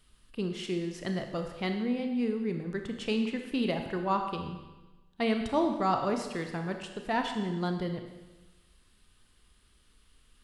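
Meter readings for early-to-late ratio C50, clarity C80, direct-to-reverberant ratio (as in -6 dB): 6.0 dB, 8.0 dB, 4.5 dB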